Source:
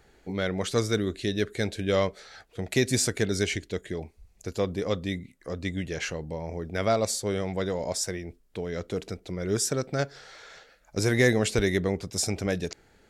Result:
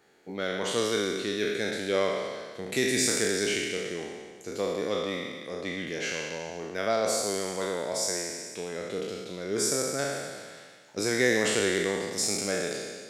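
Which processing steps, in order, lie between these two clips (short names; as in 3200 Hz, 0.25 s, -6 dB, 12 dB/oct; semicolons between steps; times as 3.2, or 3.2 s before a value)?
spectral trails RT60 1.64 s; HPF 210 Hz 12 dB/oct; delay with a stepping band-pass 0.126 s, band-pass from 2500 Hz, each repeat 0.7 oct, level -10 dB; gain -4 dB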